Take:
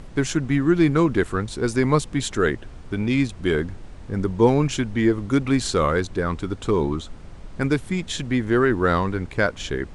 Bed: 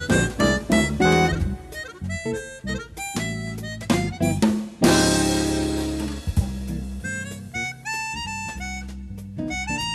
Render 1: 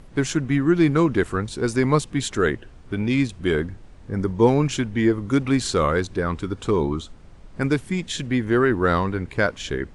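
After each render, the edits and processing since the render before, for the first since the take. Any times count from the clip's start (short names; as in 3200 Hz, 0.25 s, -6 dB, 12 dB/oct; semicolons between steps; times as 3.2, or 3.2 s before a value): noise print and reduce 6 dB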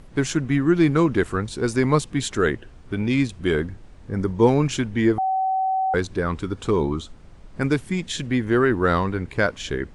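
5.18–5.94 bleep 761 Hz -19 dBFS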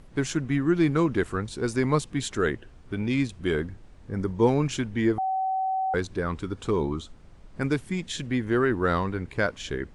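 gain -4.5 dB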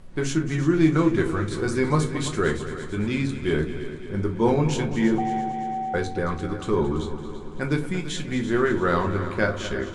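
multi-head echo 0.112 s, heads second and third, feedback 59%, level -13 dB; shoebox room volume 120 m³, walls furnished, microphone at 1 m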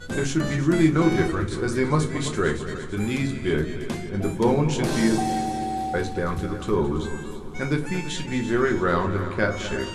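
add bed -11 dB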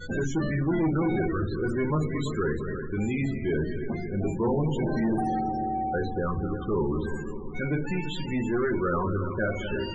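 soft clip -21 dBFS, distortion -10 dB; loudest bins only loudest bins 32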